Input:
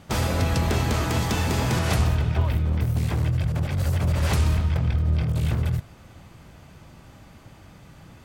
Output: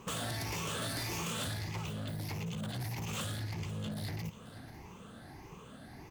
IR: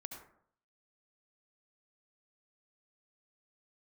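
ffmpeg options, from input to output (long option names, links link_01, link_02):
-filter_complex "[0:a]afftfilt=real='re*pow(10,12/40*sin(2*PI*(0.76*log(max(b,1)*sr/1024/100)/log(2)-(1.2)*(pts-256)/sr)))':imag='im*pow(10,12/40*sin(2*PI*(0.76*log(max(b,1)*sr/1024/100)/log(2)-(1.2)*(pts-256)/sr)))':win_size=1024:overlap=0.75,acrossover=split=1500[link_01][link_02];[link_01]acompressor=threshold=-30dB:ratio=6[link_03];[link_03][link_02]amix=inputs=2:normalize=0,asoftclip=type=hard:threshold=-29dB,aecho=1:1:659:0.158,asetrate=59535,aresample=44100,equalizer=frequency=680:width=0.65:gain=4.5,volume=-6.5dB"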